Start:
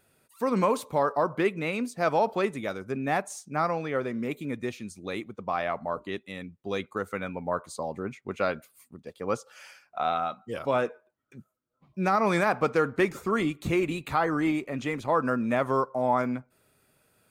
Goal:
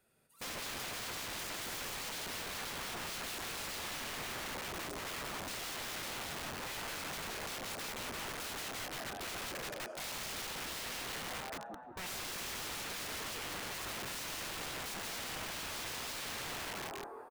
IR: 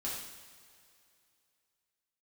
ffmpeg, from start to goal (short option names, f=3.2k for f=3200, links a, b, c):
-filter_complex "[0:a]bandreject=f=50:t=h:w=6,bandreject=f=100:t=h:w=6,bandreject=f=150:t=h:w=6,asplit=2[a][b];[1:a]atrim=start_sample=2205,lowshelf=f=130:g=6.5[c];[b][c]afir=irnorm=-1:irlink=0,volume=-9dB[d];[a][d]amix=inputs=2:normalize=0,acrossover=split=230|570[e][f][g];[e]acompressor=threshold=-46dB:ratio=4[h];[f]acompressor=threshold=-27dB:ratio=4[i];[g]acompressor=threshold=-28dB:ratio=4[j];[h][i][j]amix=inputs=3:normalize=0,acrossover=split=2600[k][l];[k]asoftclip=type=tanh:threshold=-24dB[m];[m][l]amix=inputs=2:normalize=0,afwtdn=0.0224,asubboost=boost=3:cutoff=80,asplit=8[n][o][p][q][r][s][t][u];[o]adelay=171,afreqshift=41,volume=-6dB[v];[p]adelay=342,afreqshift=82,volume=-10.9dB[w];[q]adelay=513,afreqshift=123,volume=-15.8dB[x];[r]adelay=684,afreqshift=164,volume=-20.6dB[y];[s]adelay=855,afreqshift=205,volume=-25.5dB[z];[t]adelay=1026,afreqshift=246,volume=-30.4dB[aa];[u]adelay=1197,afreqshift=287,volume=-35.3dB[ab];[n][v][w][x][y][z][aa][ab]amix=inputs=8:normalize=0,alimiter=level_in=2.5dB:limit=-24dB:level=0:latency=1:release=100,volume=-2.5dB,acompressor=threshold=-43dB:ratio=2,aeval=exprs='(mod(150*val(0)+1,2)-1)/150':c=same,volume=6.5dB"